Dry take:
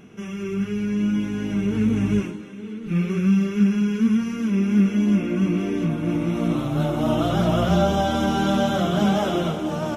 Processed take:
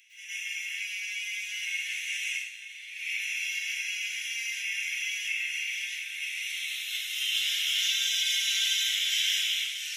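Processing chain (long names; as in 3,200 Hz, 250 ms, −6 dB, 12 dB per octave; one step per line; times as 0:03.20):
Butterworth high-pass 1,900 Hz 72 dB per octave
dense smooth reverb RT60 0.53 s, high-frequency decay 0.8×, pre-delay 95 ms, DRR −9.5 dB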